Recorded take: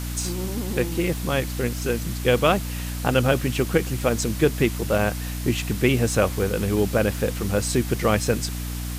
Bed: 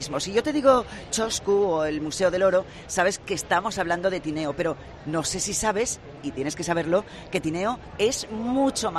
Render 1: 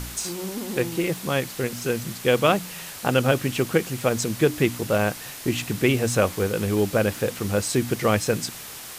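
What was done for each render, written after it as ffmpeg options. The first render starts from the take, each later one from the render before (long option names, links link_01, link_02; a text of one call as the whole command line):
ffmpeg -i in.wav -af "bandreject=frequency=60:width_type=h:width=4,bandreject=frequency=120:width_type=h:width=4,bandreject=frequency=180:width_type=h:width=4,bandreject=frequency=240:width_type=h:width=4,bandreject=frequency=300:width_type=h:width=4" out.wav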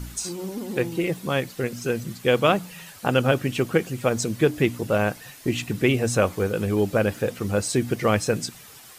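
ffmpeg -i in.wav -af "afftdn=noise_reduction=10:noise_floor=-38" out.wav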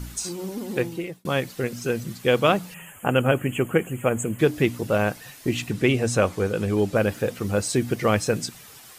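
ffmpeg -i in.wav -filter_complex "[0:a]asettb=1/sr,asplit=3[link_01][link_02][link_03];[link_01]atrim=end=2.744[link_04];[link_02]atrim=start=2.74:end=4.39,asetpts=PTS-STARTPTS,afade=type=in:duration=0.004:curve=qsin,afade=type=out:start_time=1.646:duration=0.004:curve=qsin,asuperstop=centerf=4700:order=12:qfactor=1.3[link_05];[link_03]atrim=start=4.386[link_06];[link_04][link_05]acrossfade=duration=0.004:curve1=hsin:curve2=qsin[link_07];[link_07][link_06]acrossfade=duration=0.004:curve1=qsin:curve2=hsin,asettb=1/sr,asplit=3[link_08][link_09][link_10];[link_08]atrim=end=5.704[link_11];[link_09]atrim=start=5.7:end=6.96,asetpts=PTS-STARTPTS,afade=type=in:duration=0.004:curve=qsin,afade=type=out:start_time=1.256:duration=0.004:curve=qsin,lowpass=11000[link_12];[link_10]atrim=start=6.956[link_13];[link_11][link_12]acrossfade=duration=0.004:curve1=hsin:curve2=qsin[link_14];[link_14][link_13]acrossfade=duration=0.004:curve1=qsin:curve2=hsin,asplit=2[link_15][link_16];[link_15]atrim=end=1.25,asetpts=PTS-STARTPTS,afade=type=out:start_time=0.79:duration=0.46[link_17];[link_16]atrim=start=1.25,asetpts=PTS-STARTPTS,afade=type=in:duration=0.004:curve=hsin[link_18];[link_17][link_18]concat=n=2:v=0:a=1" out.wav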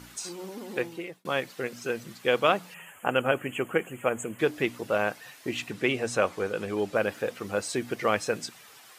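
ffmpeg -i in.wav -af "highpass=frequency=660:poles=1,highshelf=frequency=4600:gain=-9.5" out.wav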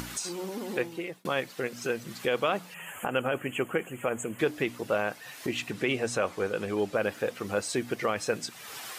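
ffmpeg -i in.wav -af "acompressor=mode=upward:threshold=-29dB:ratio=2.5,alimiter=limit=-15.5dB:level=0:latency=1:release=54" out.wav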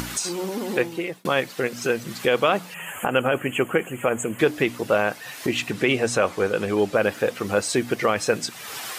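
ffmpeg -i in.wav -af "volume=7.5dB" out.wav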